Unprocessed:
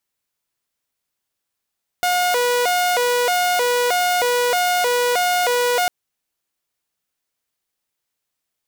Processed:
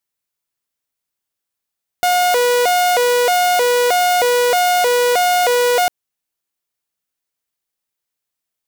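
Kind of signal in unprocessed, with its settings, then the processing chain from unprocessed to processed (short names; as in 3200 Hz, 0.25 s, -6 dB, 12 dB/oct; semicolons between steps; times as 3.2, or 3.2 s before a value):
siren hi-lo 488–718 Hz 1.6/s saw -13.5 dBFS 3.85 s
high shelf 8900 Hz +3.5 dB; sample leveller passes 2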